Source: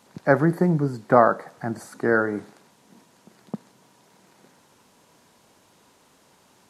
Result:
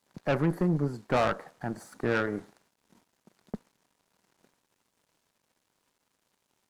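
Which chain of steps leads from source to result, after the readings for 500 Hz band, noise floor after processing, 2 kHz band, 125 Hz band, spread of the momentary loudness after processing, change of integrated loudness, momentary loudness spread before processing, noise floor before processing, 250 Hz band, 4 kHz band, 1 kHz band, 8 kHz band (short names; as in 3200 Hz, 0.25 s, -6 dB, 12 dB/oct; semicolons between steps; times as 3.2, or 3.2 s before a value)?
-8.5 dB, -78 dBFS, -8.0 dB, -5.5 dB, 17 LU, -8.0 dB, 21 LU, -59 dBFS, -7.0 dB, n/a, -10.0 dB, -5.0 dB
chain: tube stage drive 18 dB, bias 0.65; crossover distortion -59 dBFS; gain -2 dB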